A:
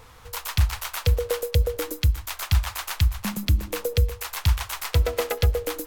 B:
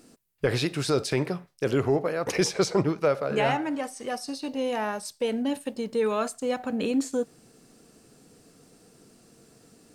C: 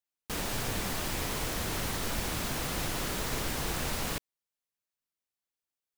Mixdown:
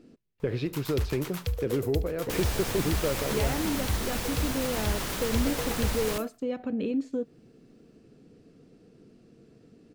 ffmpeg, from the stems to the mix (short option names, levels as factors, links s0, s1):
-filter_complex "[0:a]adelay=400,volume=0.316,asplit=2[s0][s1];[s1]volume=0.112[s2];[1:a]firequalizer=gain_entry='entry(390,0);entry(800,-11);entry(2500,-7);entry(8500,-24)':delay=0.05:min_phase=1,acompressor=threshold=0.0282:ratio=2,volume=1.26[s3];[2:a]adelay=2000,volume=1.06[s4];[s2]aecho=0:1:73|146|219|292|365:1|0.33|0.109|0.0359|0.0119[s5];[s0][s3][s4][s5]amix=inputs=4:normalize=0"